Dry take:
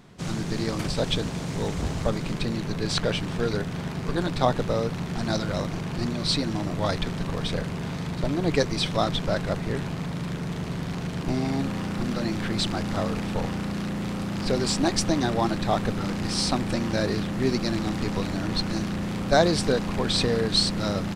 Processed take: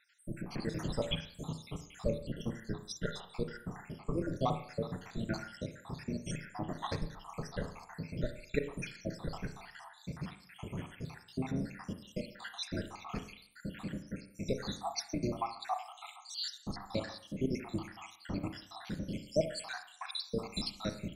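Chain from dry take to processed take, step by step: random spectral dropouts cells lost 78%; 3.85–4.39 bell 3400 Hz -3 dB -> -13 dB 1.6 oct; reverb RT60 0.60 s, pre-delay 31 ms, DRR 7.5 dB; gain -7 dB

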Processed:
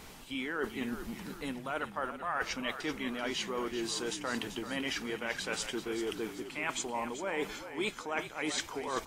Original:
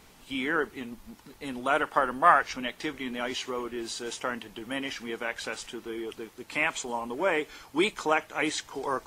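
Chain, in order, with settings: reverse; compressor 10:1, threshold -37 dBFS, peak gain reduction 23 dB; reverse; frequency-shifting echo 0.386 s, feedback 44%, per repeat -47 Hz, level -10.5 dB; gain +5 dB

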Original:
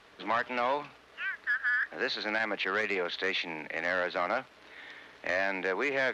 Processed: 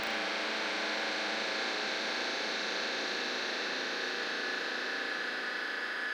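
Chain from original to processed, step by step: whole clip reversed; HPF 220 Hz 24 dB/oct; Paulstretch 7.9×, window 1.00 s, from 3.69; on a send: flutter echo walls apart 6.1 m, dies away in 0.54 s; on the sum: spectral compressor 2:1; gain -6 dB

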